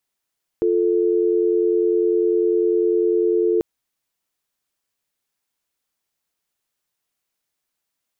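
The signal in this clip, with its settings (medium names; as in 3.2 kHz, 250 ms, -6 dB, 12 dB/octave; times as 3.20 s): call progress tone dial tone, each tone -18 dBFS 2.99 s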